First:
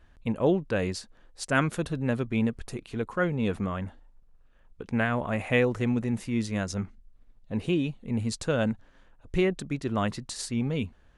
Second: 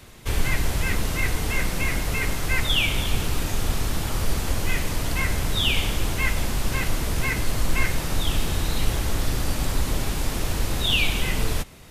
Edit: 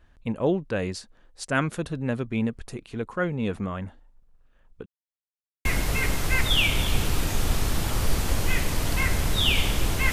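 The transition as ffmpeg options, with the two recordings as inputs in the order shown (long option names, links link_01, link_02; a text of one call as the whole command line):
ffmpeg -i cue0.wav -i cue1.wav -filter_complex "[0:a]apad=whole_dur=10.12,atrim=end=10.12,asplit=2[link_01][link_02];[link_01]atrim=end=4.86,asetpts=PTS-STARTPTS,afade=type=out:start_time=4.856:duration=0.004:curve=hsin[link_03];[link_02]atrim=start=4.86:end=5.65,asetpts=PTS-STARTPTS,volume=0[link_04];[1:a]atrim=start=1.84:end=6.31,asetpts=PTS-STARTPTS,afade=type=in:duration=0.004:curve=hsin[link_05];[link_03][link_04][link_05]concat=n=3:v=0:a=1" out.wav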